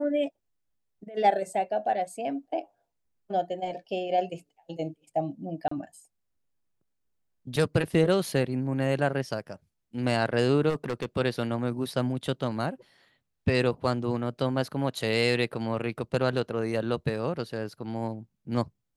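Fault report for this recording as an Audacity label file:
5.680000	5.710000	dropout 34 ms
10.690000	11.060000	clipped -25 dBFS

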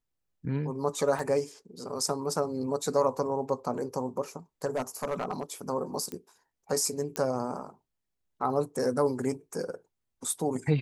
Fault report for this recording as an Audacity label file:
1.190000	1.190000	dropout 2.2 ms
4.650000	5.430000	clipped -24.5 dBFS
6.120000	6.120000	pop -22 dBFS
7.160000	7.160000	pop -15 dBFS

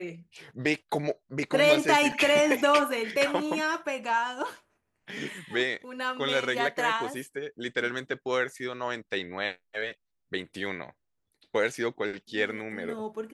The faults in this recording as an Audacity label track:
2.120000	2.120000	dropout 4 ms

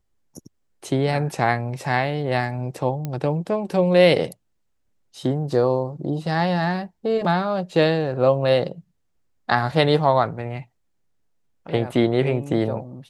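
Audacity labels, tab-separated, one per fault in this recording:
3.050000	3.050000	pop -15 dBFS

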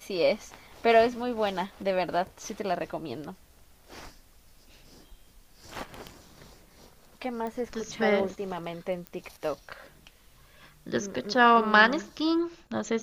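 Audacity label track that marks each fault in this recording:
7.470000	7.470000	pop -24 dBFS
9.070000	9.070000	pop -23 dBFS

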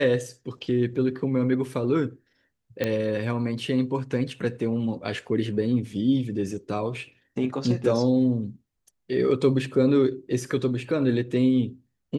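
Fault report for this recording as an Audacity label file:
2.840000	2.840000	pop -12 dBFS

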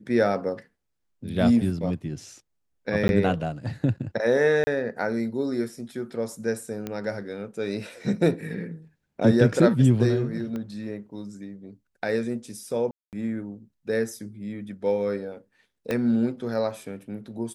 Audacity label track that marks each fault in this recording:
3.080000	3.090000	dropout 11 ms
4.640000	4.670000	dropout 30 ms
6.870000	6.870000	pop -17 dBFS
10.560000	10.560000	pop -22 dBFS
12.910000	13.130000	dropout 218 ms
15.910000	15.910000	pop -14 dBFS

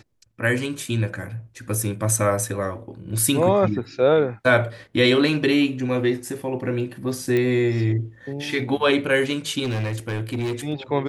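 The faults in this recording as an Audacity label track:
7.370000	7.370000	pop -12 dBFS
9.630000	10.530000	clipped -21.5 dBFS

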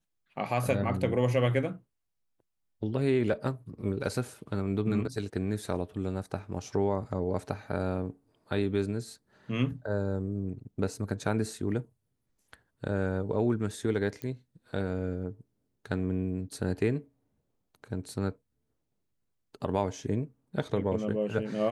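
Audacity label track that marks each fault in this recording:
14.220000	14.220000	pop -22 dBFS

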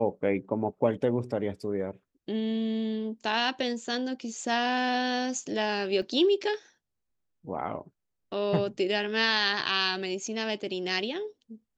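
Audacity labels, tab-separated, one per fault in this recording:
6.020000	6.020000	dropout 2.3 ms

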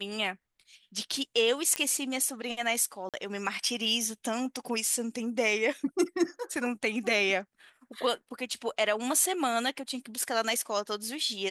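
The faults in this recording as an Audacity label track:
1.760000	1.760000	pop -12 dBFS
3.090000	3.140000	dropout 47 ms

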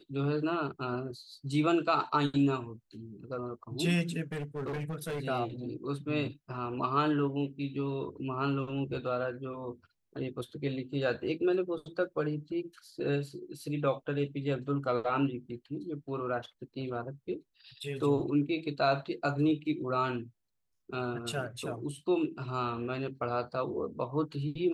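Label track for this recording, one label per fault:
4.320000	5.200000	clipped -32 dBFS

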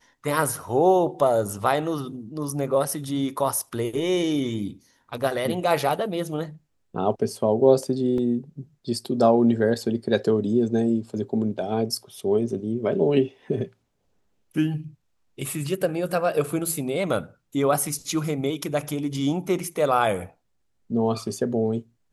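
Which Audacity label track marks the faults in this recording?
8.180000	8.180000	dropout 2.4 ms

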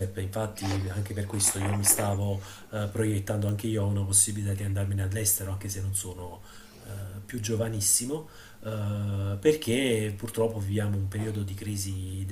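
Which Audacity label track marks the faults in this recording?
3.490000	3.490000	pop

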